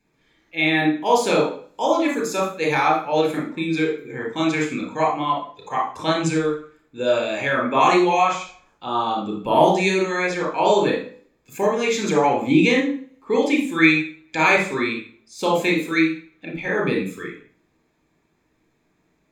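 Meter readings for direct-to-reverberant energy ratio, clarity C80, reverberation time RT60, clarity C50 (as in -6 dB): 1.0 dB, 10.5 dB, 0.45 s, 5.0 dB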